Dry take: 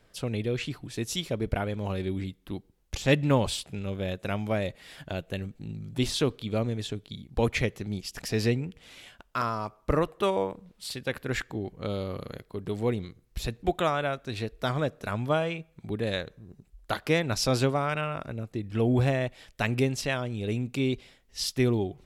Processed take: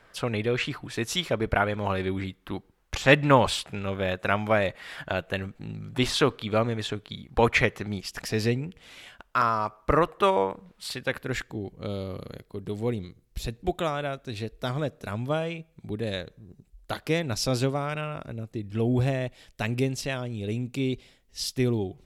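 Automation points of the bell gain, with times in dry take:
bell 1300 Hz 2.2 oct
7.86 s +12 dB
8.46 s +1 dB
9.65 s +8 dB
10.96 s +8 dB
11.51 s -3.5 dB

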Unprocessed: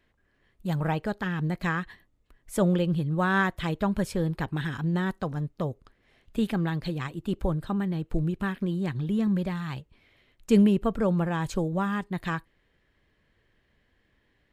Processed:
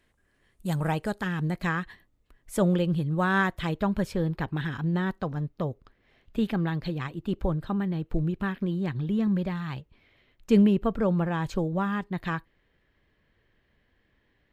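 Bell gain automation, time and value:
bell 9400 Hz 1 oct
1.15 s +11 dB
1.68 s -0.5 dB
3.48 s -0.5 dB
4.26 s -10.5 dB

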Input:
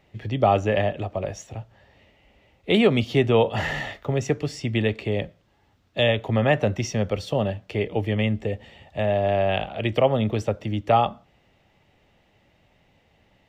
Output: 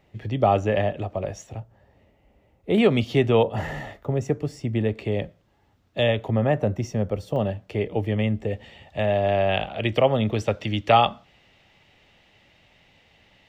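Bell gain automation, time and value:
bell 3400 Hz 2.5 oct
-3 dB
from 1.6 s -12.5 dB
from 2.78 s -1.5 dB
from 3.43 s -11 dB
from 4.97 s -3.5 dB
from 6.31 s -12 dB
from 7.36 s -4.5 dB
from 8.51 s +2 dB
from 10.48 s +9 dB

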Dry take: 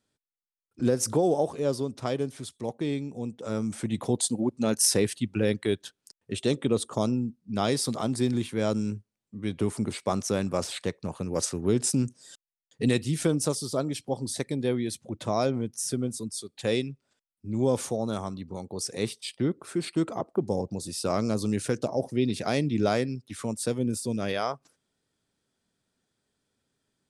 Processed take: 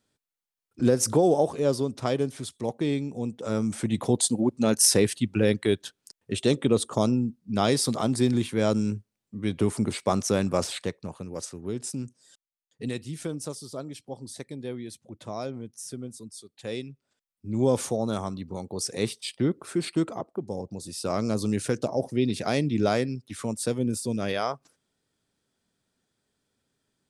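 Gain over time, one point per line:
10.62 s +3 dB
11.45 s -8 dB
16.64 s -8 dB
17.63 s +2 dB
19.94 s +2 dB
20.42 s -6 dB
21.38 s +1 dB

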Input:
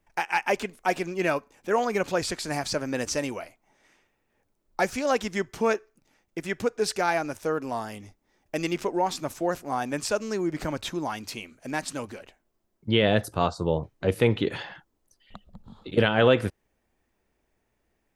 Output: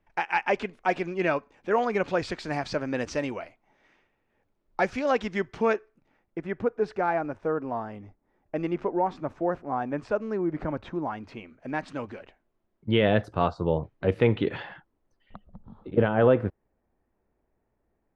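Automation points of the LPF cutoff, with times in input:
5.67 s 3200 Hz
6.5 s 1400 Hz
11.1 s 1400 Hz
12.15 s 2600 Hz
14.69 s 2600 Hz
15.88 s 1200 Hz

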